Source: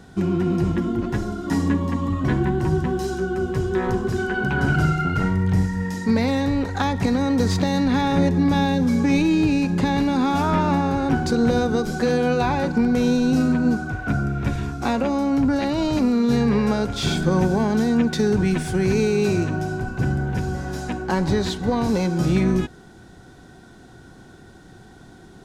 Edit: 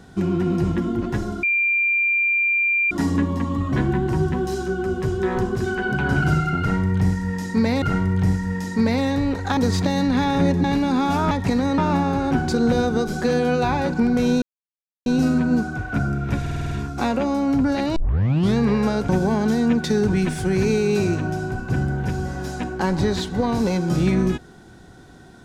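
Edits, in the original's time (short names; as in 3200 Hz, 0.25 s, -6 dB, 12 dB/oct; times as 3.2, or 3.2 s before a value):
1.43 add tone 2380 Hz -16.5 dBFS 1.48 s
5.12–6.34 loop, 2 plays
6.87–7.34 move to 10.56
8.41–9.89 cut
13.2 insert silence 0.64 s
14.55 stutter 0.05 s, 7 plays
15.8 tape start 0.61 s
16.93–17.38 cut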